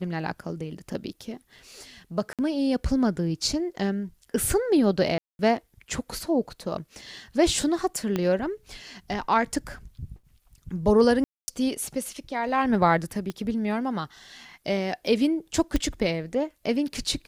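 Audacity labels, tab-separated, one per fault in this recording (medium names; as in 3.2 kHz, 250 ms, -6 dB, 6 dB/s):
2.330000	2.390000	dropout 57 ms
5.180000	5.390000	dropout 211 ms
8.160000	8.160000	pop -13 dBFS
11.240000	11.480000	dropout 240 ms
13.300000	13.300000	pop -18 dBFS
15.760000	15.760000	pop -11 dBFS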